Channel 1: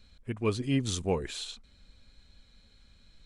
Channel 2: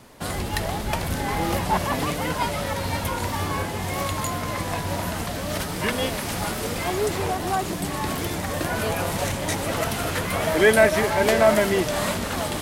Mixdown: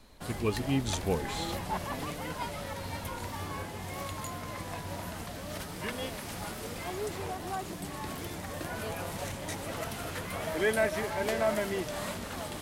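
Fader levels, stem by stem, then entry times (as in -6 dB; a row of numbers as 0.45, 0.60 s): -1.5, -11.5 dB; 0.00, 0.00 s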